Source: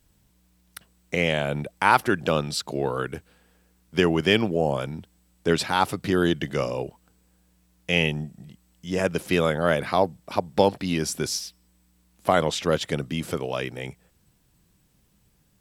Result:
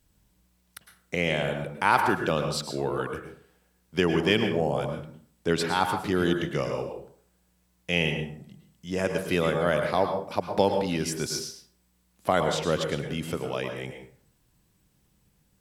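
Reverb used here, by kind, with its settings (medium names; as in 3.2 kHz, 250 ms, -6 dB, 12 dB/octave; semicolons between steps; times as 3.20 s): plate-style reverb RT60 0.51 s, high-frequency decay 0.6×, pre-delay 95 ms, DRR 5 dB; trim -3.5 dB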